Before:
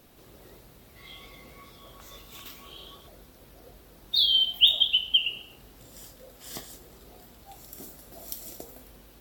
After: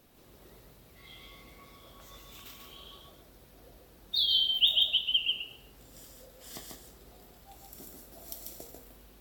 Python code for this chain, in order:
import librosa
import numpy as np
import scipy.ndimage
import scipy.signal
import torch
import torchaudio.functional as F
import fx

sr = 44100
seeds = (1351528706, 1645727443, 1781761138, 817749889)

y = x + 10.0 ** (-3.5 / 20.0) * np.pad(x, (int(142 * sr / 1000.0), 0))[:len(x)]
y = y * librosa.db_to_amplitude(-5.5)